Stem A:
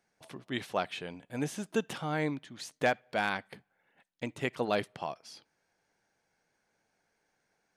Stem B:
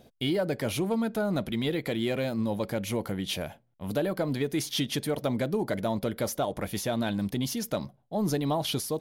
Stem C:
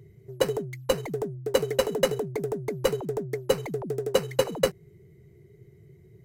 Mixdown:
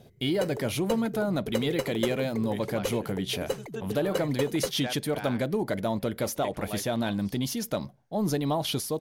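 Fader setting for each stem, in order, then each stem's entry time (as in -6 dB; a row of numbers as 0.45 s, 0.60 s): -8.5 dB, +0.5 dB, -7.5 dB; 2.00 s, 0.00 s, 0.00 s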